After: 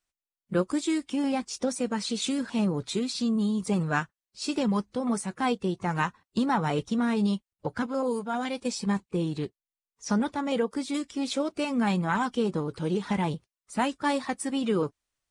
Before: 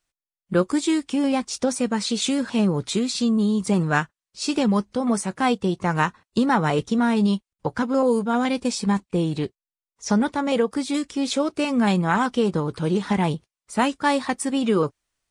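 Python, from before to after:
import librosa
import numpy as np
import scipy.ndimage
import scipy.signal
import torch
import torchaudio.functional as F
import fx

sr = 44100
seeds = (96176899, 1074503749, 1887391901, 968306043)

y = fx.spec_quant(x, sr, step_db=15)
y = fx.low_shelf(y, sr, hz=340.0, db=-7.0, at=(7.86, 8.66))
y = y * librosa.db_to_amplitude(-5.5)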